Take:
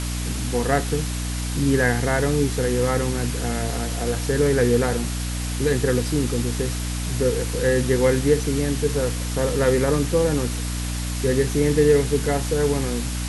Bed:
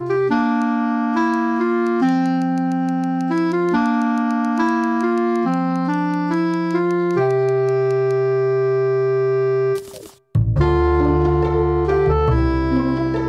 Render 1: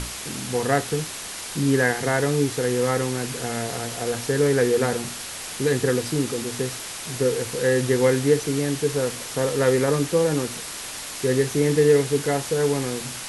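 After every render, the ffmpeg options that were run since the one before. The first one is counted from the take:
ffmpeg -i in.wav -af "bandreject=frequency=60:width_type=h:width=6,bandreject=frequency=120:width_type=h:width=6,bandreject=frequency=180:width_type=h:width=6,bandreject=frequency=240:width_type=h:width=6,bandreject=frequency=300:width_type=h:width=6" out.wav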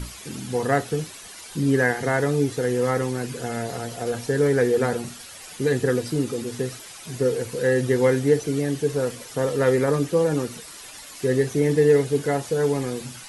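ffmpeg -i in.wav -af "afftdn=noise_reduction=11:noise_floor=-34" out.wav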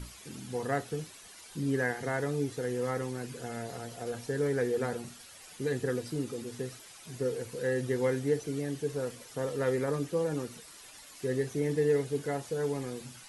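ffmpeg -i in.wav -af "volume=-10dB" out.wav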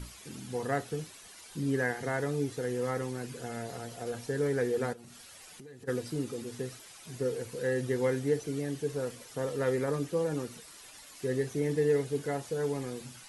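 ffmpeg -i in.wav -filter_complex "[0:a]asplit=3[link_01][link_02][link_03];[link_01]afade=type=out:start_time=4.92:duration=0.02[link_04];[link_02]acompressor=threshold=-46dB:ratio=10:attack=3.2:release=140:knee=1:detection=peak,afade=type=in:start_time=4.92:duration=0.02,afade=type=out:start_time=5.87:duration=0.02[link_05];[link_03]afade=type=in:start_time=5.87:duration=0.02[link_06];[link_04][link_05][link_06]amix=inputs=3:normalize=0" out.wav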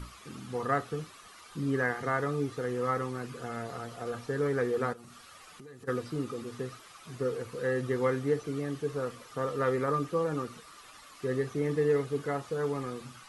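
ffmpeg -i in.wav -filter_complex "[0:a]acrossover=split=4600[link_01][link_02];[link_02]acompressor=threshold=-57dB:ratio=4:attack=1:release=60[link_03];[link_01][link_03]amix=inputs=2:normalize=0,equalizer=frequency=1200:width_type=o:width=0.29:gain=14.5" out.wav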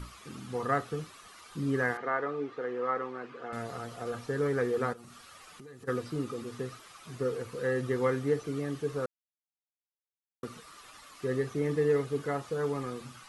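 ffmpeg -i in.wav -filter_complex "[0:a]asettb=1/sr,asplit=3[link_01][link_02][link_03];[link_01]atrim=end=1.974[link_04];[link_02]atrim=start=1.97:end=3.53,asetpts=PTS-STARTPTS,afade=type=in:duration=0.004:curve=qsin,afade=type=out:start_time=1.556:duration=0.004:curve=qsin,highpass=330,lowpass=2500[link_05];[link_03]atrim=start=3.526[link_06];[link_04][link_05]acrossfade=duration=0.004:curve1=hsin:curve2=qsin[link_07];[link_07][link_06]acrossfade=duration=0.004:curve1=qsin:curve2=hsin,asplit=3[link_08][link_09][link_10];[link_08]atrim=end=9.06,asetpts=PTS-STARTPTS,afade=type=out:start_time=9.056:duration=0.004:curve=hsin[link_11];[link_09]atrim=start=9.06:end=10.43,asetpts=PTS-STARTPTS,volume=0[link_12];[link_10]atrim=start=10.43,asetpts=PTS-STARTPTS,afade=type=in:duration=0.004:curve=hsin[link_13];[link_11][link_12][link_13]concat=n=3:v=0:a=1" out.wav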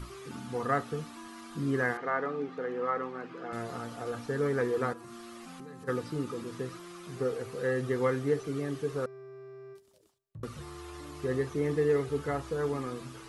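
ffmpeg -i in.wav -i bed.wav -filter_complex "[1:a]volume=-29.5dB[link_01];[0:a][link_01]amix=inputs=2:normalize=0" out.wav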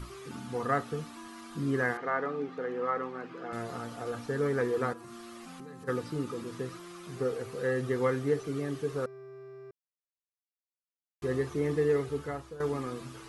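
ffmpeg -i in.wav -filter_complex "[0:a]asplit=4[link_01][link_02][link_03][link_04];[link_01]atrim=end=9.71,asetpts=PTS-STARTPTS,afade=type=out:start_time=9.706:duration=0.004:curve=hsin[link_05];[link_02]atrim=start=9.71:end=11.22,asetpts=PTS-STARTPTS,volume=0[link_06];[link_03]atrim=start=11.22:end=12.6,asetpts=PTS-STARTPTS,afade=type=in:duration=0.004:curve=hsin,afade=type=out:start_time=0.53:duration=0.85:curve=qsin:silence=0.211349[link_07];[link_04]atrim=start=12.6,asetpts=PTS-STARTPTS,afade=type=in:duration=0.004:curve=hsin:silence=0.211349[link_08];[link_05][link_06][link_07][link_08]concat=n=4:v=0:a=1" out.wav

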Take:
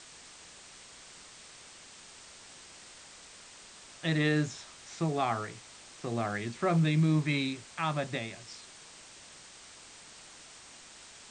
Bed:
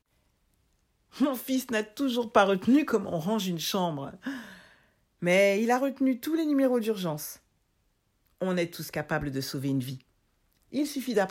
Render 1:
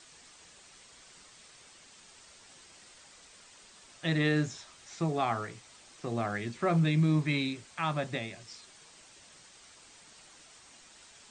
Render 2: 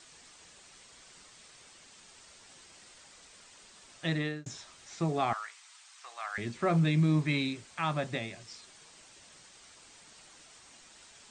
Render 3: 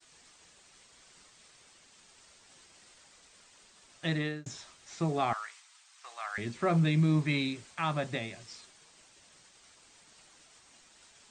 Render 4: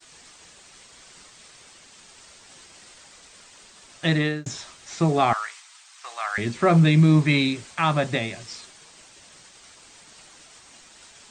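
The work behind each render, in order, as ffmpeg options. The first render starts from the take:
ffmpeg -i in.wav -af "afftdn=noise_reduction=6:noise_floor=-52" out.wav
ffmpeg -i in.wav -filter_complex "[0:a]asettb=1/sr,asplit=3[link_01][link_02][link_03];[link_01]atrim=end=5.334[link_04];[link_02]atrim=start=5.33:end=6.38,asetpts=PTS-STARTPTS,afade=type=in:duration=0.004:curve=qsin,afade=type=out:start_time=1.046:duration=0.004:curve=qsin,highpass=frequency=950:width=0.5412,highpass=frequency=950:width=1.3066[link_05];[link_03]atrim=start=6.376[link_06];[link_04][link_05]acrossfade=duration=0.004:curve1=hsin:curve2=qsin[link_07];[link_07][link_06]acrossfade=duration=0.004:curve1=qsin:curve2=hsin,asplit=2[link_08][link_09];[link_08]atrim=end=4.46,asetpts=PTS-STARTPTS,afade=type=out:start_time=4.04:duration=0.42[link_10];[link_09]atrim=start=4.46,asetpts=PTS-STARTPTS,afade=type=in:duration=0.004:curve=hsin[link_11];[link_10][link_11]concat=n=2:v=0:a=1" out.wav
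ffmpeg -i in.wav -af "agate=range=-33dB:threshold=-51dB:ratio=3:detection=peak" out.wav
ffmpeg -i in.wav -af "volume=10dB" out.wav

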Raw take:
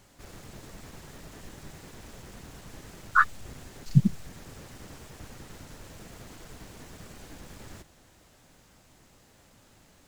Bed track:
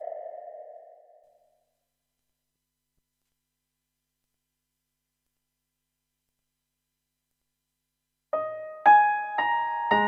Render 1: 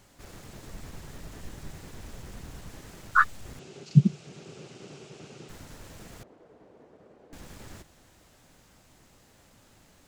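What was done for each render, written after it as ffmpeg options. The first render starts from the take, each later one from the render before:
ffmpeg -i in.wav -filter_complex "[0:a]asettb=1/sr,asplit=3[link_01][link_02][link_03];[link_01]atrim=end=0.674[link_04];[link_02]atrim=start=0.67:end=2.69,asetpts=PTS-STARTPTS,afade=type=in:duration=0.004:curve=qsin,afade=type=out:start_time=2.016:duration=0.004:curve=qsin,lowshelf=frequency=120:gain=7[link_05];[link_03]atrim=start=2.686[link_06];[link_04][link_05]acrossfade=duration=0.004:curve1=hsin:curve2=qsin[link_07];[link_07][link_06]acrossfade=duration=0.004:curve1=qsin:curve2=hsin,asettb=1/sr,asplit=3[link_08][link_09][link_10];[link_08]atrim=end=3.594[link_11];[link_09]atrim=start=3.59:end=5.49,asetpts=PTS-STARTPTS,afade=type=in:duration=0.004:curve=qsin,afade=type=out:start_time=1.896:duration=0.004:curve=qsin,highpass=frequency=130:width=0.5412,highpass=frequency=130:width=1.3066,equalizer=frequency=150:width_type=q:width=4:gain=6,equalizer=frequency=260:width_type=q:width=4:gain=-3,equalizer=frequency=390:width_type=q:width=4:gain=10,equalizer=frequency=1000:width_type=q:width=4:gain=-6,equalizer=frequency=1800:width_type=q:width=4:gain=-8,equalizer=frequency=2700:width_type=q:width=4:gain=5,lowpass=frequency=7300:width=0.5412,lowpass=frequency=7300:width=1.3066[link_12];[link_10]atrim=start=5.486[link_13];[link_11][link_12]acrossfade=duration=0.004:curve1=hsin:curve2=qsin[link_14];[link_14][link_13]acrossfade=duration=0.004:curve1=qsin:curve2=hsin,asettb=1/sr,asplit=3[link_15][link_16][link_17];[link_15]atrim=end=6.234[link_18];[link_16]atrim=start=6.23:end=7.33,asetpts=PTS-STARTPTS,afade=type=in:duration=0.004:curve=qsin,afade=type=out:start_time=1.096:duration=0.004:curve=qsin,bandpass=frequency=480:width_type=q:width=1.6[link_19];[link_17]atrim=start=7.326[link_20];[link_18][link_19]acrossfade=duration=0.004:curve1=hsin:curve2=qsin[link_21];[link_21][link_20]acrossfade=duration=0.004:curve1=qsin:curve2=hsin" out.wav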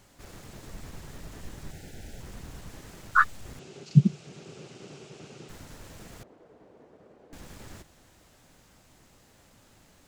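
ffmpeg -i in.wav -filter_complex "[0:a]asettb=1/sr,asplit=3[link_01][link_02][link_03];[link_01]atrim=end=1.714[link_04];[link_02]atrim=start=1.71:end=2.2,asetpts=PTS-STARTPTS,afade=type=in:duration=0.004:curve=qsin,afade=type=out:start_time=0.486:duration=0.004:curve=qsin,asuperstop=centerf=1100:order=8:qfactor=2.2[link_05];[link_03]atrim=start=2.196[link_06];[link_04][link_05]acrossfade=duration=0.004:curve1=hsin:curve2=qsin[link_07];[link_07][link_06]acrossfade=duration=0.004:curve1=qsin:curve2=hsin" out.wav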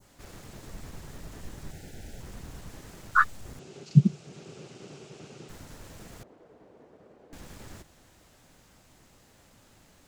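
ffmpeg -i in.wav -af "adynamicequalizer=threshold=0.002:dfrequency=2700:dqfactor=0.74:tfrequency=2700:tqfactor=0.74:attack=5:release=100:ratio=0.375:range=2.5:mode=cutabove:tftype=bell" out.wav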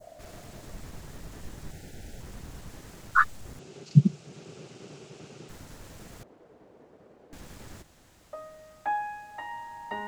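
ffmpeg -i in.wav -i bed.wav -filter_complex "[1:a]volume=-13.5dB[link_01];[0:a][link_01]amix=inputs=2:normalize=0" out.wav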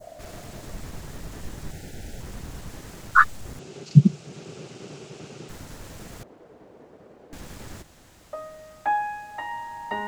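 ffmpeg -i in.wav -af "volume=5.5dB,alimiter=limit=-1dB:level=0:latency=1" out.wav

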